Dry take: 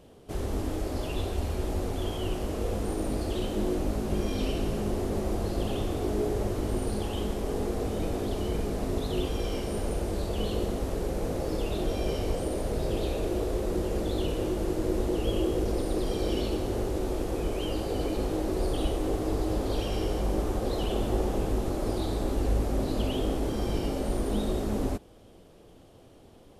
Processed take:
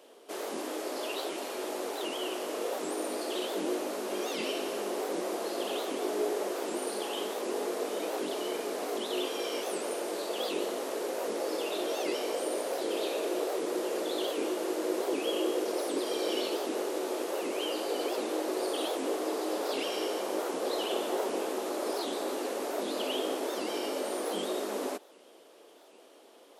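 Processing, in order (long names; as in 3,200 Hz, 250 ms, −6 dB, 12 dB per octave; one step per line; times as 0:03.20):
Bessel high-pass filter 490 Hz, order 6
notch filter 770 Hz, Q 17
wow of a warped record 78 rpm, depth 250 cents
level +3.5 dB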